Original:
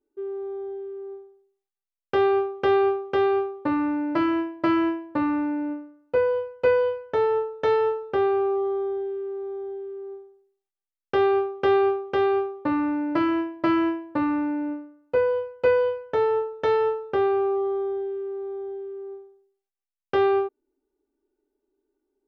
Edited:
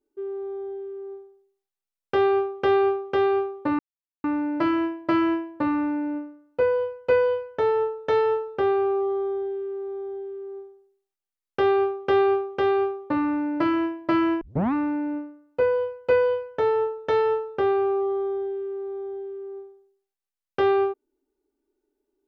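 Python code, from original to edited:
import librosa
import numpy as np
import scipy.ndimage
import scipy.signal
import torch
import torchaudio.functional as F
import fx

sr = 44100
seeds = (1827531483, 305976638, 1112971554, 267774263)

y = fx.edit(x, sr, fx.insert_silence(at_s=3.79, length_s=0.45),
    fx.tape_start(start_s=13.96, length_s=0.32), tone=tone)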